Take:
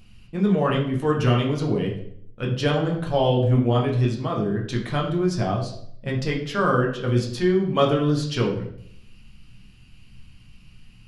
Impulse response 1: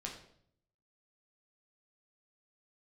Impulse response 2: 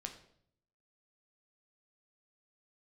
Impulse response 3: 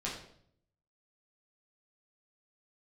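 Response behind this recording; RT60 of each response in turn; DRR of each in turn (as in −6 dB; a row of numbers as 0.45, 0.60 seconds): 1; 0.65, 0.65, 0.65 seconds; −1.5, 3.5, −6.0 decibels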